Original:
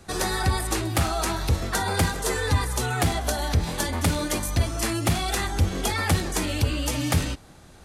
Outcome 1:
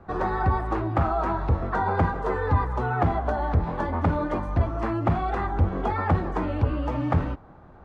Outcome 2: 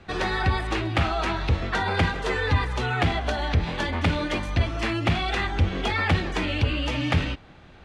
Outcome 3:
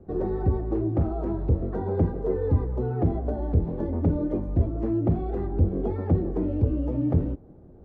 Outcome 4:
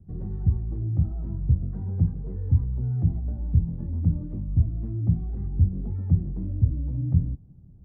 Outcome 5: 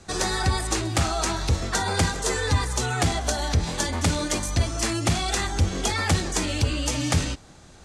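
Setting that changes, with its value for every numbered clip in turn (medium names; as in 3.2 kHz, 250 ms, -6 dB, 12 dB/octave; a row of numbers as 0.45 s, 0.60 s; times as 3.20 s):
resonant low-pass, frequency: 1.1 kHz, 2.8 kHz, 420 Hz, 150 Hz, 7.2 kHz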